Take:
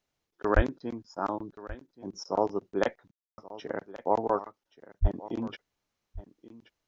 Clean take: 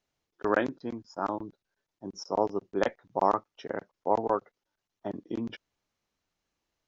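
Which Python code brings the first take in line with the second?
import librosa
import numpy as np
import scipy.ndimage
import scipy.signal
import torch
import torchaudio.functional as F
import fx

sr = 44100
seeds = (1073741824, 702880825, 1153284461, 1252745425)

y = fx.highpass(x, sr, hz=140.0, slope=24, at=(0.55, 0.67), fade=0.02)
y = fx.highpass(y, sr, hz=140.0, slope=24, at=(5.01, 5.13), fade=0.02)
y = fx.fix_ambience(y, sr, seeds[0], print_start_s=5.64, print_end_s=6.14, start_s=3.11, end_s=3.38)
y = fx.fix_echo_inverse(y, sr, delay_ms=1128, level_db=-17.5)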